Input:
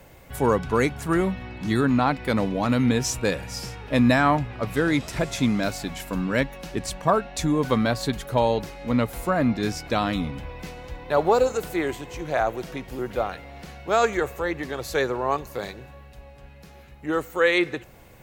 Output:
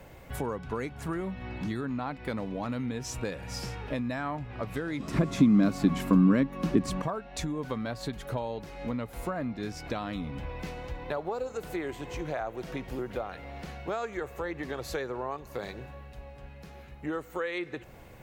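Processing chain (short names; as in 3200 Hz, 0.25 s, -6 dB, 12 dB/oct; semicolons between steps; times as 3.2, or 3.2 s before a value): high shelf 4200 Hz -6.5 dB; compressor 6:1, threshold -31 dBFS, peak gain reduction 15.5 dB; 5–7.02 small resonant body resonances 200/280/1100 Hz, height 14 dB, ringing for 35 ms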